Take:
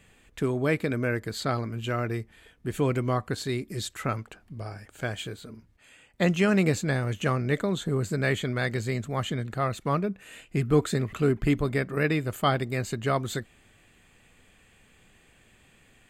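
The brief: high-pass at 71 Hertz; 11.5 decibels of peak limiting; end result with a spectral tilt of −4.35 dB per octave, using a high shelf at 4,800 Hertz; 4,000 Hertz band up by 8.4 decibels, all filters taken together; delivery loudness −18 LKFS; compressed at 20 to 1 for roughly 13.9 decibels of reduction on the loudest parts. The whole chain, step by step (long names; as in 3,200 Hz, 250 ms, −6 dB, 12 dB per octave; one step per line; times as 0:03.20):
high-pass filter 71 Hz
parametric band 4,000 Hz +8 dB
high-shelf EQ 4,800 Hz +5.5 dB
downward compressor 20 to 1, threshold −31 dBFS
level +22.5 dB
brickwall limiter −7.5 dBFS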